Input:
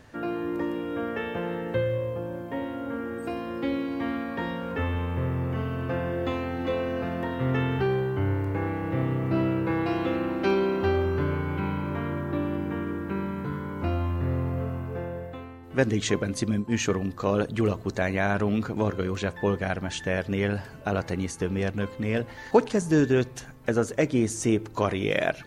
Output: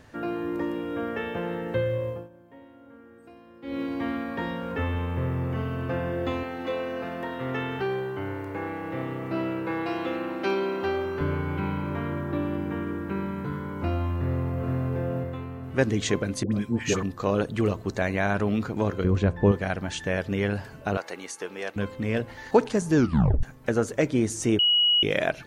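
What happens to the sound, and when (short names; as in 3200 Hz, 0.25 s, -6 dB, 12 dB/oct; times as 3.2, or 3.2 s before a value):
2.09–3.82 dip -17.5 dB, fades 0.20 s
6.43–11.21 HPF 360 Hz 6 dB/oct
14.16–14.76 echo throw 0.47 s, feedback 45%, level -2.5 dB
16.43–17.03 dispersion highs, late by 91 ms, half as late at 830 Hz
19.04–19.52 tilt -3 dB/oct
20.97–21.76 HPF 530 Hz
22.96 tape stop 0.47 s
24.59–25.03 bleep 2910 Hz -17.5 dBFS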